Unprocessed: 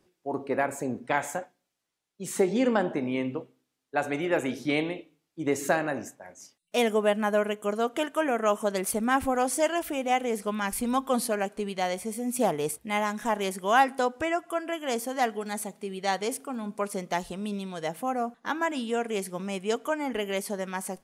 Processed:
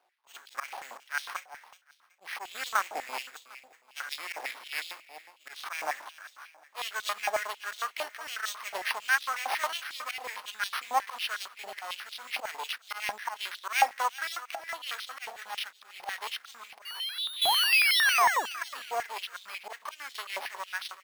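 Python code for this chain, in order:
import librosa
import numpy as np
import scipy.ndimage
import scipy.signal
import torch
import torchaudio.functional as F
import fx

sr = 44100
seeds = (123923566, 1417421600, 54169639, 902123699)

p1 = fx.block_float(x, sr, bits=5)
p2 = fx.high_shelf(p1, sr, hz=2900.0, db=2.5)
p3 = fx.auto_swell(p2, sr, attack_ms=127.0)
p4 = fx.spec_paint(p3, sr, seeds[0], shape='rise', start_s=16.85, length_s=1.66, low_hz=2800.0, high_hz=7400.0, level_db=-20.0)
p5 = fx.tube_stage(p4, sr, drive_db=33.0, bias=0.75, at=(16.79, 17.42))
p6 = np.maximum(p5, 0.0)
p7 = p6 + fx.echo_feedback(p6, sr, ms=376, feedback_pct=30, wet_db=-15.0, dry=0)
p8 = np.repeat(p7[::6], 6)[:len(p7)]
p9 = fx.filter_held_highpass(p8, sr, hz=11.0, low_hz=780.0, high_hz=3600.0)
y = p9 * librosa.db_to_amplitude(-2.0)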